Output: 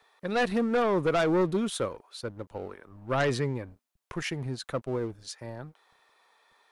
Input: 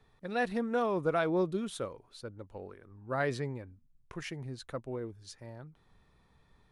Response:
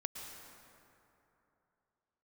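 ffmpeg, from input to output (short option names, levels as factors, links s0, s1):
-filter_complex "[0:a]aeval=exprs='0.119*(cos(1*acos(clip(val(0)/0.119,-1,1)))-cos(1*PI/2))+0.00668*(cos(4*acos(clip(val(0)/0.119,-1,1)))-cos(4*PI/2))+0.0237*(cos(5*acos(clip(val(0)/0.119,-1,1)))-cos(5*PI/2))':c=same,acrossover=split=490|4100[s0][s1][s2];[s0]aeval=exprs='sgn(val(0))*max(abs(val(0))-0.00266,0)':c=same[s3];[s3][s1][s2]amix=inputs=3:normalize=0,volume=1.33"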